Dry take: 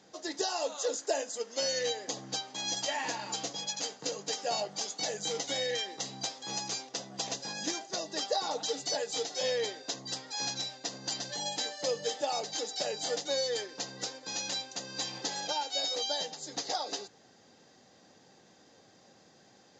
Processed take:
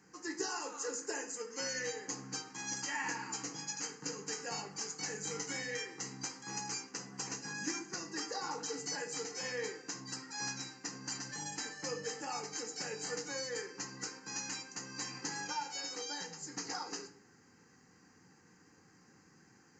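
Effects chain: static phaser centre 1.5 kHz, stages 4; reverberation RT60 0.60 s, pre-delay 7 ms, DRR 5 dB

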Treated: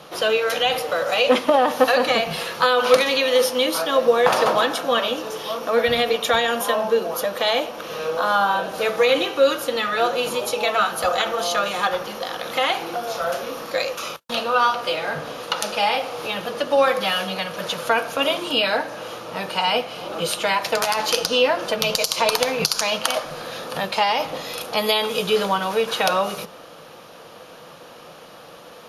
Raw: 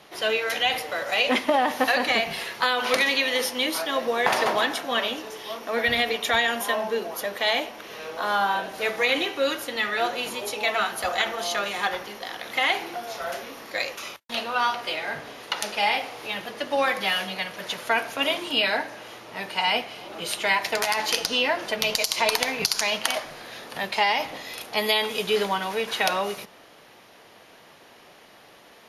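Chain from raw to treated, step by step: band-stop 410 Hz, Q 12; in parallel at -1 dB: compression, threshold -33 dBFS, peak gain reduction 15.5 dB; on the sum: graphic EQ with 31 bands 160 Hz +8 dB, 500 Hz +9 dB, 1.25 kHz +6 dB, 2 kHz -8 dB; trim +1 dB

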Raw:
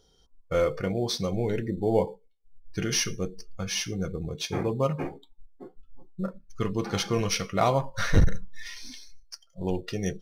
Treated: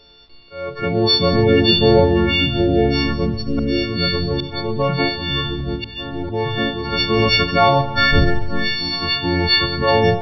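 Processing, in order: partials quantised in pitch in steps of 4 st; hum notches 60/120/180 Hz; in parallel at -1 dB: compressor with a negative ratio -27 dBFS, ratio -1; on the sum: bit crusher 10-bit; slow attack 617 ms; ever faster or slower copies 295 ms, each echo -4 st, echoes 2; on a send at -10.5 dB: reverberation RT60 1.4 s, pre-delay 63 ms; on the sum: resampled via 11.025 kHz; trim +5.5 dB

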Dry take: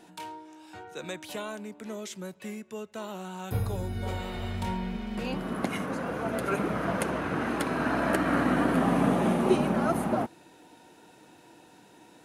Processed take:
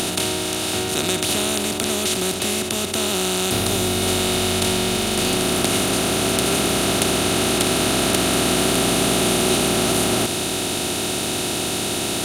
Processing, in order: spectral levelling over time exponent 0.2; resonant high shelf 2.4 kHz +13.5 dB, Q 1.5; in parallel at -3.5 dB: short-mantissa float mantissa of 2-bit; on the sum: trim -7 dB

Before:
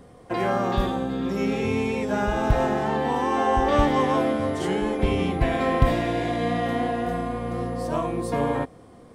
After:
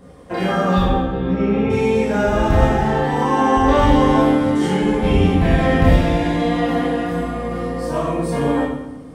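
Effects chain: 0.79–1.69 s: low-pass 3.1 kHz -> 1.9 kHz 12 dB/octave; reverberation RT60 0.90 s, pre-delay 19 ms, DRR -4.5 dB

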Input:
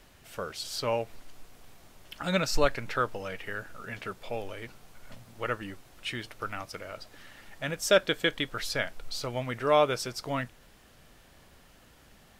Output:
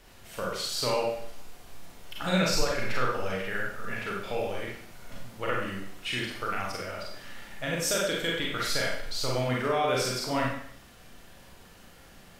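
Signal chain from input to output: peak limiter -20.5 dBFS, peak gain reduction 11.5 dB; Schroeder reverb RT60 0.64 s, combs from 32 ms, DRR -3.5 dB

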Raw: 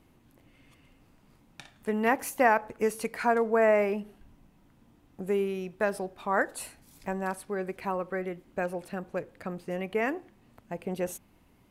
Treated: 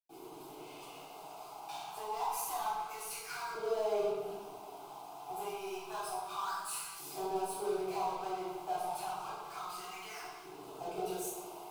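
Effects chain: hum notches 50/100/150/200/250/300/350/400 Hz; compression, threshold -35 dBFS, peak gain reduction 16.5 dB; LFO high-pass saw up 0.29 Hz 380–1700 Hz; power-law waveshaper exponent 0.5; static phaser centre 360 Hz, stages 8; reverberation RT60 1.5 s, pre-delay 92 ms, DRR -60 dB; trim +6.5 dB

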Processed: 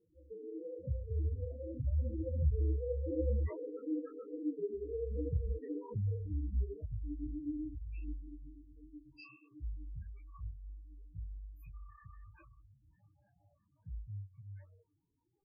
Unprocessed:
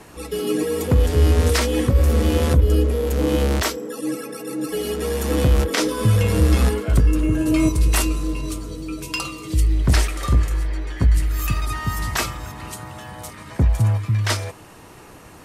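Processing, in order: Doppler pass-by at 3.91 s, 17 m/s, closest 18 m; loudest bins only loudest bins 4; detune thickener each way 47 cents; trim -7 dB

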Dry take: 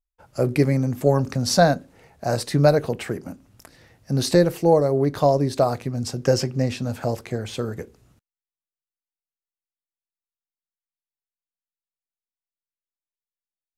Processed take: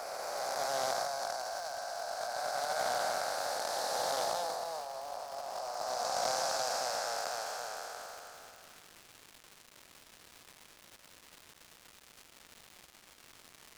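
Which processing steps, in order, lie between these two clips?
spectral blur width 1410 ms; Chebyshev high-pass 710 Hz, order 4; high-order bell 2.6 kHz -10.5 dB 1.2 oct; compressor with a negative ratio -41 dBFS, ratio -0.5; crackle 420 per s -46 dBFS; on a send: reverse echo 236 ms -8 dB; on the sum: loudspeaker Doppler distortion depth 0.13 ms; trim +6 dB

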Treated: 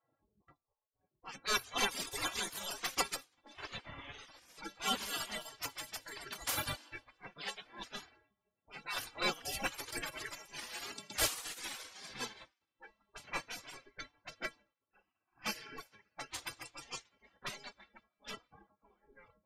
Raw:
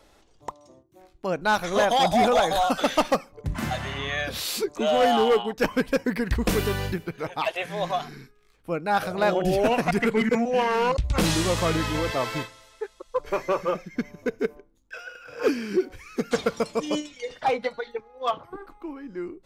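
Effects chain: feedback echo behind a high-pass 332 ms, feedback 80%, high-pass 4.2 kHz, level -13 dB; level-controlled noise filter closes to 320 Hz, open at -19.5 dBFS; inharmonic resonator 200 Hz, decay 0.25 s, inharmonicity 0.008; reverb removal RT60 1.8 s; spectral gate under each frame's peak -25 dB weak; trim +15 dB

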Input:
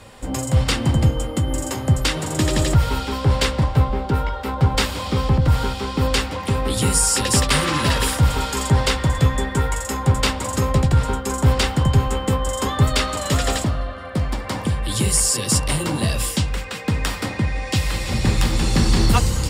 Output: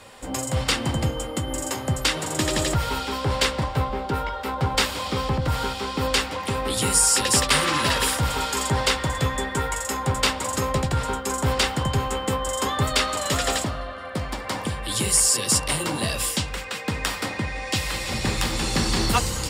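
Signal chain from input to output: bass shelf 250 Hz -10.5 dB

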